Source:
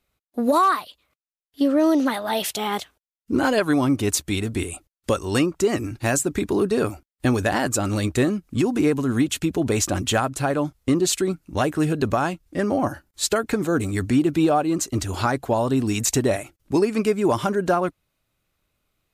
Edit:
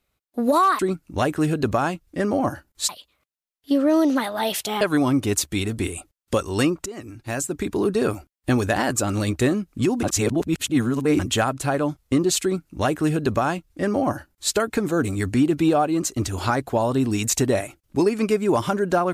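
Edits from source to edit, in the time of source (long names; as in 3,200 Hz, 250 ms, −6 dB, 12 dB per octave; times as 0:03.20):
0:02.71–0:03.57: remove
0:05.62–0:06.71: fade in, from −17 dB
0:08.79–0:09.95: reverse
0:11.18–0:13.28: duplicate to 0:00.79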